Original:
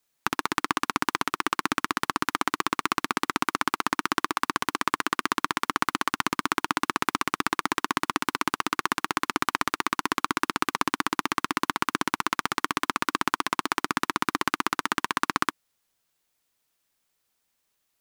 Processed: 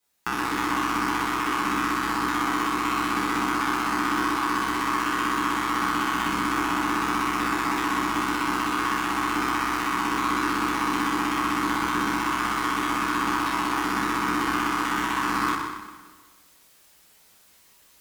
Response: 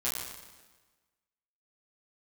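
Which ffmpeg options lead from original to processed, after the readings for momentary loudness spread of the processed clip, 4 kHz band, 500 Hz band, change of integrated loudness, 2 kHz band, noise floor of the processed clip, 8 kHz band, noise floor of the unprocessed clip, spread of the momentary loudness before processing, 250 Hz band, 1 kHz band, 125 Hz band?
1 LU, -0.5 dB, +2.0 dB, +2.5 dB, +2.0 dB, -57 dBFS, -0.5 dB, -76 dBFS, 1 LU, +5.5 dB, +3.0 dB, +4.0 dB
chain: -filter_complex "[0:a]areverse,acompressor=mode=upward:threshold=-47dB:ratio=2.5,areverse,asoftclip=type=tanh:threshold=-10.5dB[a];[1:a]atrim=start_sample=2205,asetrate=41895,aresample=44100[b];[a][b]afir=irnorm=-1:irlink=0,volume=-1.5dB"

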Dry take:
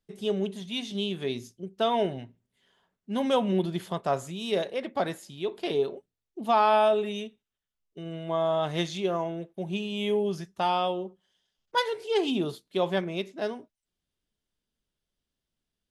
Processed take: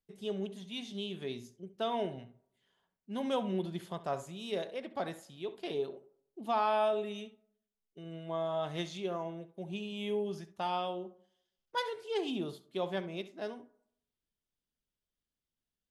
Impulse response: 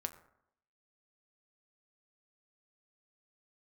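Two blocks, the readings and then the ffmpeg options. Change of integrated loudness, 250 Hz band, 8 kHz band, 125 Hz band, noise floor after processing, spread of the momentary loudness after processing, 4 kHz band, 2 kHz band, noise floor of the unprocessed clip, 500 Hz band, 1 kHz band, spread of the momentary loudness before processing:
-8.0 dB, -8.0 dB, -8.5 dB, -8.0 dB, under -85 dBFS, 12 LU, -8.5 dB, -8.5 dB, under -85 dBFS, -8.0 dB, -8.5 dB, 12 LU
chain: -filter_complex "[0:a]asplit=2[a][b];[1:a]atrim=start_sample=2205,highshelf=f=5.7k:g=-8.5,adelay=67[c];[b][c]afir=irnorm=-1:irlink=0,volume=-12dB[d];[a][d]amix=inputs=2:normalize=0,volume=-8.5dB"

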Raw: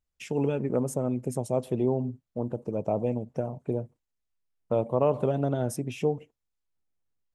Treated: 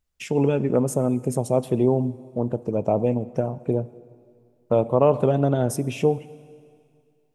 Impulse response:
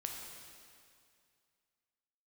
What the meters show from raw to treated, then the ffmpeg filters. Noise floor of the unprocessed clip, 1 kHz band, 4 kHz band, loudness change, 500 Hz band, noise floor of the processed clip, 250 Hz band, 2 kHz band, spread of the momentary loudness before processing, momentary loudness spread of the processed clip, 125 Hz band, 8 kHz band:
-84 dBFS, +6.5 dB, n/a, +6.5 dB, +6.5 dB, -65 dBFS, +6.5 dB, +6.5 dB, 8 LU, 8 LU, +6.5 dB, +6.5 dB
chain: -filter_complex "[0:a]asplit=2[a][b];[1:a]atrim=start_sample=2205[c];[b][c]afir=irnorm=-1:irlink=0,volume=-13dB[d];[a][d]amix=inputs=2:normalize=0,volume=5dB"

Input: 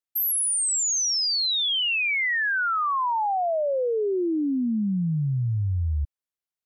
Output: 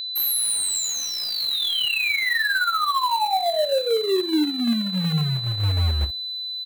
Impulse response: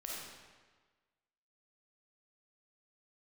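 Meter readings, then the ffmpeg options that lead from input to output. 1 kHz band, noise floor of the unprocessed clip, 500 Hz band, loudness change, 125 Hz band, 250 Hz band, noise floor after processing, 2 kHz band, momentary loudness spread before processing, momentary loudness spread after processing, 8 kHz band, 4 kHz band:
+2.0 dB, under -85 dBFS, +2.0 dB, +1.5 dB, +1.5 dB, +1.5 dB, -31 dBFS, +1.5 dB, 5 LU, 4 LU, -1.5 dB, +4.0 dB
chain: -filter_complex "[0:a]areverse,acompressor=mode=upward:threshold=-40dB:ratio=2.5,areverse,aphaser=in_gain=1:out_gain=1:delay=3.6:decay=0.24:speed=1.6:type=triangular,asplit=2[a][b];[b]aecho=0:1:13|43|59:0.501|0.15|0.282[c];[a][c]amix=inputs=2:normalize=0,acrusher=bits=3:mode=log:mix=0:aa=0.000001,bandreject=f=167.3:t=h:w=4,bandreject=f=334.6:t=h:w=4,bandreject=f=501.9:t=h:w=4,bandreject=f=669.2:t=h:w=4,bandreject=f=836.5:t=h:w=4,aeval=exprs='val(0)+0.0631*sin(2*PI*4000*n/s)':c=same,equalizer=f=5.5k:w=1.9:g=-10"

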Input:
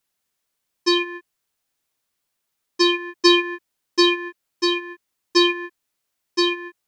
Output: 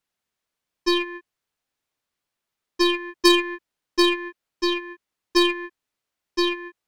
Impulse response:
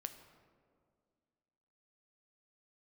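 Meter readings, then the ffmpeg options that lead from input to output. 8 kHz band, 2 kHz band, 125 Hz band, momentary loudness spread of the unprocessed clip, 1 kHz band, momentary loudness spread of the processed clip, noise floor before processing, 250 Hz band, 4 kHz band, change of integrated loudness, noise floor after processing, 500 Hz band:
-1.5 dB, -2.5 dB, n/a, 19 LU, -1.5 dB, 19 LU, -78 dBFS, -1.5 dB, -3.5 dB, -2.5 dB, -85 dBFS, -1.5 dB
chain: -af "highshelf=f=6.1k:g=-10,aeval=exprs='0.531*(cos(1*acos(clip(val(0)/0.531,-1,1)))-cos(1*PI/2))+0.119*(cos(3*acos(clip(val(0)/0.531,-1,1)))-cos(3*PI/2))+0.0266*(cos(5*acos(clip(val(0)/0.531,-1,1)))-cos(5*PI/2))+0.0119*(cos(8*acos(clip(val(0)/0.531,-1,1)))-cos(8*PI/2))':c=same,volume=3dB"

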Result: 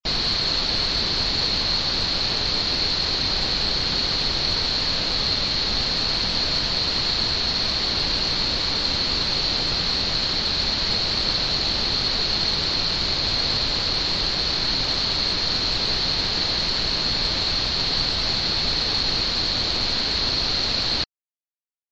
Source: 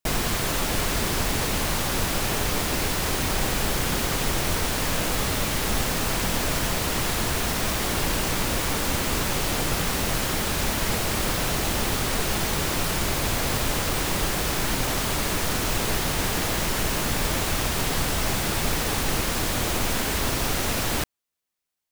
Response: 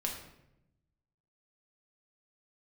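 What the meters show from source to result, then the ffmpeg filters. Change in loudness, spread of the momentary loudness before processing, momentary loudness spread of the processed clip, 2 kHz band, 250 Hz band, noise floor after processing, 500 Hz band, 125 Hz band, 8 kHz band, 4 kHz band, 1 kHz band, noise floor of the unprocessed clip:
+4.0 dB, 0 LU, 1 LU, -1.5 dB, -3.5 dB, -25 dBFS, -3.5 dB, -3.5 dB, -9.5 dB, +10.5 dB, -3.0 dB, -27 dBFS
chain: -af "lowpass=f=4.3k:t=q:w=14,afftfilt=real='re*gte(hypot(re,im),0.0141)':imag='im*gte(hypot(re,im),0.0141)':win_size=1024:overlap=0.75,volume=-3.5dB"

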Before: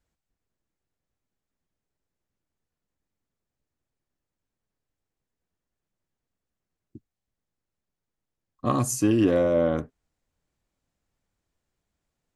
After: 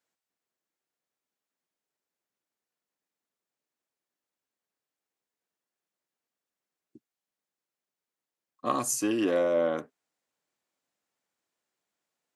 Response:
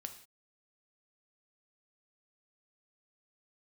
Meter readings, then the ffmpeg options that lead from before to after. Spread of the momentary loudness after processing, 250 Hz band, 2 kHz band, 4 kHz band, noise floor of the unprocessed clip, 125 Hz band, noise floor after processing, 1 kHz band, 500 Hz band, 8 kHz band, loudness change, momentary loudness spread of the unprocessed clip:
9 LU, -7.0 dB, -0.5 dB, 0.0 dB, under -85 dBFS, -17.0 dB, under -85 dBFS, -1.0 dB, -3.5 dB, 0.0 dB, -4.5 dB, 9 LU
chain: -af "highpass=220,lowshelf=f=360:g=-9.5"

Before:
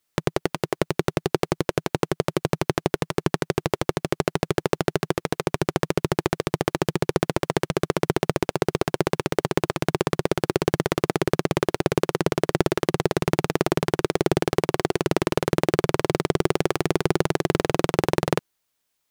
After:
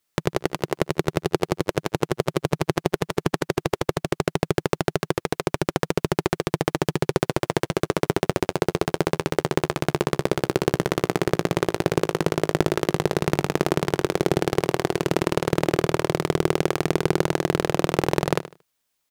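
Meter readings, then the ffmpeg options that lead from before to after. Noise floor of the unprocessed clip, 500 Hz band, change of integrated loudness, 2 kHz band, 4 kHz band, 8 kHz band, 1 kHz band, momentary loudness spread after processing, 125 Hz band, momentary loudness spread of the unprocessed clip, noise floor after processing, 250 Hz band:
-76 dBFS, 0.0 dB, 0.0 dB, 0.0 dB, 0.0 dB, 0.0 dB, 0.0 dB, 3 LU, 0.0 dB, 3 LU, -75 dBFS, 0.0 dB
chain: -af "aecho=1:1:76|152|228:0.2|0.0519|0.0135"

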